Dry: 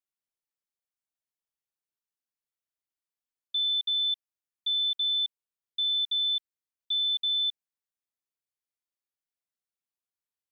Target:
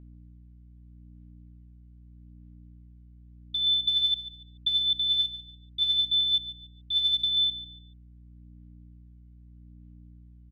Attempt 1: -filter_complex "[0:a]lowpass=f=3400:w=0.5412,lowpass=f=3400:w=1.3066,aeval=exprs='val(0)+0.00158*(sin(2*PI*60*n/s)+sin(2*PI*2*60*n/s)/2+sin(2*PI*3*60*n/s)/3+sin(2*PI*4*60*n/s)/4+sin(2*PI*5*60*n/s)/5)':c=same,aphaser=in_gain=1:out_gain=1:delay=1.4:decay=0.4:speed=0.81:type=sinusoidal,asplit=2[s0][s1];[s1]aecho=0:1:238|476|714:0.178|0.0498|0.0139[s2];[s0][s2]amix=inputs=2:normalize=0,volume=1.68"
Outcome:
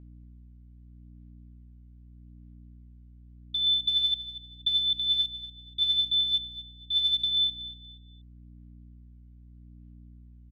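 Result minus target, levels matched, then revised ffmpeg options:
echo 94 ms late
-filter_complex "[0:a]lowpass=f=3400:w=0.5412,lowpass=f=3400:w=1.3066,aeval=exprs='val(0)+0.00158*(sin(2*PI*60*n/s)+sin(2*PI*2*60*n/s)/2+sin(2*PI*3*60*n/s)/3+sin(2*PI*4*60*n/s)/4+sin(2*PI*5*60*n/s)/5)':c=same,aphaser=in_gain=1:out_gain=1:delay=1.4:decay=0.4:speed=0.81:type=sinusoidal,asplit=2[s0][s1];[s1]aecho=0:1:144|288|432:0.178|0.0498|0.0139[s2];[s0][s2]amix=inputs=2:normalize=0,volume=1.68"

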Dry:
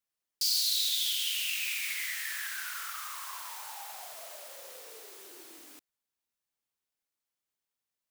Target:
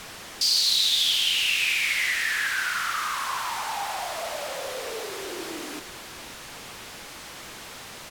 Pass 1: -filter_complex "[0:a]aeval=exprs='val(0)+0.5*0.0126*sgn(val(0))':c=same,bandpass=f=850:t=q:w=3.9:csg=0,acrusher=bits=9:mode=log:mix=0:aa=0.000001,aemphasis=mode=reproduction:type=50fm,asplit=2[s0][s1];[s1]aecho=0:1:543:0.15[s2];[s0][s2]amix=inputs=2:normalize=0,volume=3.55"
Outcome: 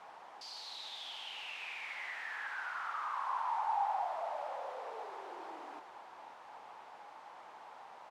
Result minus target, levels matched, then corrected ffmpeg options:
1 kHz band +11.5 dB
-filter_complex "[0:a]aeval=exprs='val(0)+0.5*0.0126*sgn(val(0))':c=same,acrusher=bits=9:mode=log:mix=0:aa=0.000001,aemphasis=mode=reproduction:type=50fm,asplit=2[s0][s1];[s1]aecho=0:1:543:0.15[s2];[s0][s2]amix=inputs=2:normalize=0,volume=3.55"

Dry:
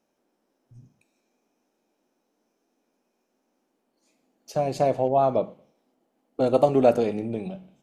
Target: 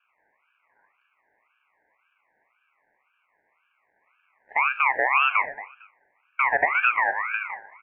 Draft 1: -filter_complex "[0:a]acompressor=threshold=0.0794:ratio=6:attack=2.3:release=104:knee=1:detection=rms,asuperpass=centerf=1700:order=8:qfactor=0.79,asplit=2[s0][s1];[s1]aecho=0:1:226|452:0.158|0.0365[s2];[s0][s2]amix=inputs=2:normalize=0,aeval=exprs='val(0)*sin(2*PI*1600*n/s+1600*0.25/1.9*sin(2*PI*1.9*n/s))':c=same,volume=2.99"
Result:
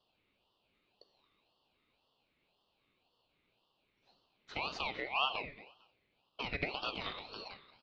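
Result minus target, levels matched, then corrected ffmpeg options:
500 Hz band +3.5 dB
-filter_complex "[0:a]acompressor=threshold=0.0794:ratio=6:attack=2.3:release=104:knee=1:detection=rms,asuperpass=centerf=600:order=8:qfactor=0.79,asplit=2[s0][s1];[s1]aecho=0:1:226|452:0.158|0.0365[s2];[s0][s2]amix=inputs=2:normalize=0,aeval=exprs='val(0)*sin(2*PI*1600*n/s+1600*0.25/1.9*sin(2*PI*1.9*n/s))':c=same,volume=2.99"

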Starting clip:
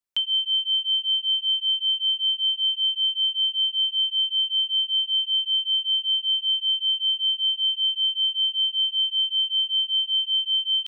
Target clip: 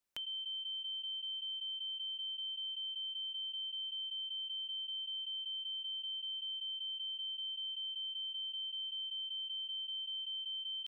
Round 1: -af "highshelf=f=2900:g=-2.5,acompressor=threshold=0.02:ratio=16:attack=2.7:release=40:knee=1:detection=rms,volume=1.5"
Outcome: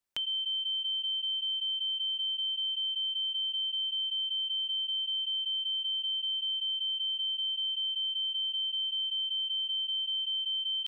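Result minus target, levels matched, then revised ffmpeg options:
compression: peak gain reduction -9 dB
-af "highshelf=f=2900:g=-2.5,acompressor=threshold=0.00668:ratio=16:attack=2.7:release=40:knee=1:detection=rms,volume=1.5"

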